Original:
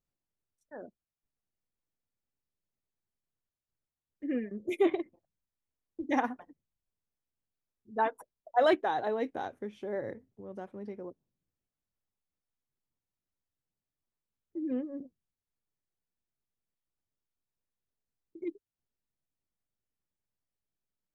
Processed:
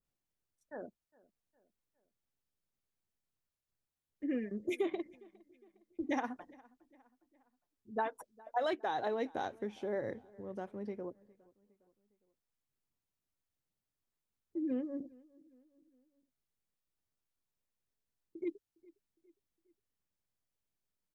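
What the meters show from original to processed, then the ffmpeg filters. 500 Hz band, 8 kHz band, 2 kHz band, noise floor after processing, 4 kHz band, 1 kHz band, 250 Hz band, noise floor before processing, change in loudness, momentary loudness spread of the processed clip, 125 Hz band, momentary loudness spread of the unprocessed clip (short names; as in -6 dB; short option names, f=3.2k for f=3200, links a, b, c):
-5.5 dB, n/a, -5.5 dB, under -85 dBFS, -4.5 dB, -6.0 dB, -3.5 dB, under -85 dBFS, -6.0 dB, 14 LU, -1.0 dB, 19 LU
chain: -filter_complex "[0:a]adynamicequalizer=threshold=0.00126:dfrequency=5500:dqfactor=1:tfrequency=5500:tqfactor=1:attack=5:release=100:ratio=0.375:range=3:mode=boostabove:tftype=bell,acompressor=threshold=-31dB:ratio=6,asplit=2[a][b];[b]adelay=409,lowpass=f=3.5k:p=1,volume=-24dB,asplit=2[c][d];[d]adelay=409,lowpass=f=3.5k:p=1,volume=0.49,asplit=2[e][f];[f]adelay=409,lowpass=f=3.5k:p=1,volume=0.49[g];[c][e][g]amix=inputs=3:normalize=0[h];[a][h]amix=inputs=2:normalize=0"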